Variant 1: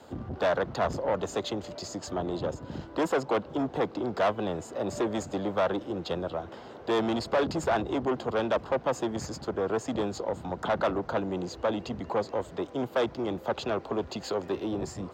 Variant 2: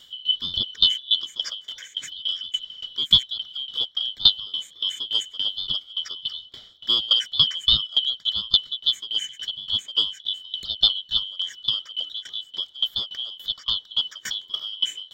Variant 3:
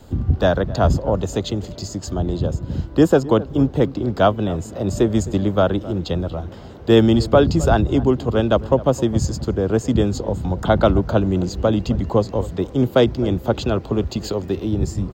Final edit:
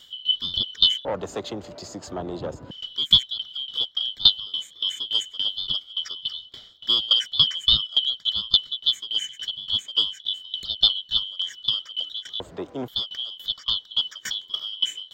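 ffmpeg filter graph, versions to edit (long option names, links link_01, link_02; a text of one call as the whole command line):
ffmpeg -i take0.wav -i take1.wav -filter_complex "[0:a]asplit=2[link_01][link_02];[1:a]asplit=3[link_03][link_04][link_05];[link_03]atrim=end=1.052[link_06];[link_01]atrim=start=1.048:end=2.712[link_07];[link_04]atrim=start=2.708:end=12.402[link_08];[link_02]atrim=start=12.398:end=12.882[link_09];[link_05]atrim=start=12.878[link_10];[link_06][link_07]acrossfade=duration=0.004:curve1=hsin:curve2=hsin[link_11];[link_11][link_08]acrossfade=duration=0.004:curve1=hsin:curve2=hsin[link_12];[link_12][link_09]acrossfade=duration=0.004:curve1=hsin:curve2=hsin[link_13];[link_13][link_10]acrossfade=duration=0.004:curve1=hsin:curve2=hsin" out.wav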